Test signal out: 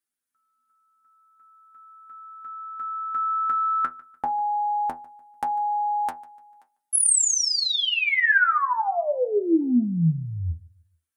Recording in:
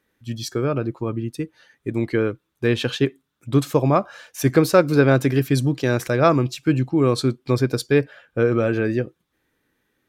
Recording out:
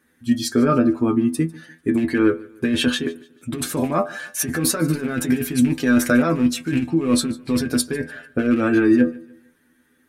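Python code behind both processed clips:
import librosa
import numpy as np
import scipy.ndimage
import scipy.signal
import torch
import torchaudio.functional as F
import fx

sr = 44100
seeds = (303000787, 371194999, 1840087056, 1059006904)

y = fx.rattle_buzz(x, sr, strikes_db=-18.0, level_db=-23.0)
y = fx.graphic_eq_15(y, sr, hz=(250, 1600, 10000), db=(12, 8, 11))
y = fx.over_compress(y, sr, threshold_db=-17.0, ratio=-1.0)
y = fx.stiff_resonator(y, sr, f0_hz=81.0, decay_s=0.22, stiffness=0.002)
y = fx.echo_feedback(y, sr, ms=148, feedback_pct=36, wet_db=-22.0)
y = fx.end_taper(y, sr, db_per_s=460.0)
y = y * 10.0 ** (6.0 / 20.0)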